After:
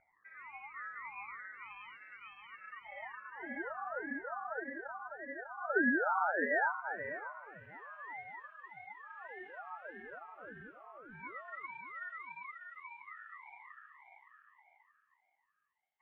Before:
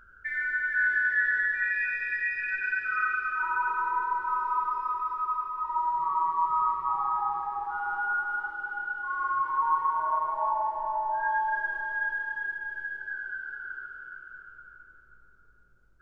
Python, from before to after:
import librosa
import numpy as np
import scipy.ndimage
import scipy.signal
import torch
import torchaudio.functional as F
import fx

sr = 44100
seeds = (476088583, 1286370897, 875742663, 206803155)

y = fx.filter_sweep_bandpass(x, sr, from_hz=750.0, to_hz=2400.0, start_s=5.23, end_s=7.96, q=5.8)
y = fx.ring_lfo(y, sr, carrier_hz=450.0, swing_pct=60, hz=1.7)
y = y * librosa.db_to_amplitude(2.0)